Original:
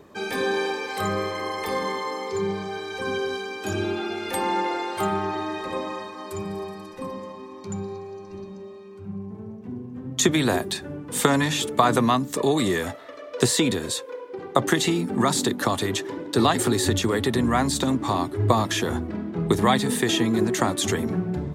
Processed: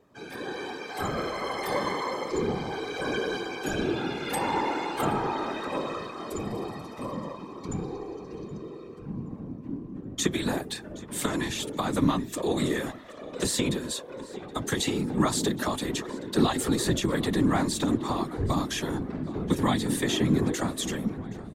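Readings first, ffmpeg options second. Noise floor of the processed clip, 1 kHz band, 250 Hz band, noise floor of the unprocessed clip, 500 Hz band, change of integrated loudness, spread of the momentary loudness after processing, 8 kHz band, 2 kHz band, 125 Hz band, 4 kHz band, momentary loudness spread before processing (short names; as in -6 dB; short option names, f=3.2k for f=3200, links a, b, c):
-43 dBFS, -6.0 dB, -3.0 dB, -41 dBFS, -5.5 dB, -5.0 dB, 12 LU, -5.5 dB, -5.5 dB, -4.0 dB, -5.0 dB, 15 LU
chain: -filter_complex "[0:a]lowshelf=f=170:g=-4,acrossover=split=240|2900[a][b][c];[b]alimiter=limit=-12.5dB:level=0:latency=1:release=420[d];[a][d][c]amix=inputs=3:normalize=0,dynaudnorm=f=400:g=5:m=11.5dB,equalizer=f=230:w=4.2:g=8,asplit=2[e][f];[f]adelay=772,lowpass=f=3.8k:p=1,volume=-17dB,asplit=2[g][h];[h]adelay=772,lowpass=f=3.8k:p=1,volume=0.52,asplit=2[i][j];[j]adelay=772,lowpass=f=3.8k:p=1,volume=0.52,asplit=2[k][l];[l]adelay=772,lowpass=f=3.8k:p=1,volume=0.52,asplit=2[m][n];[n]adelay=772,lowpass=f=3.8k:p=1,volume=0.52[o];[g][i][k][m][o]amix=inputs=5:normalize=0[p];[e][p]amix=inputs=2:normalize=0,afftfilt=real='hypot(re,im)*cos(2*PI*random(0))':imag='hypot(re,im)*sin(2*PI*random(1))':win_size=512:overlap=0.75,volume=-6.5dB"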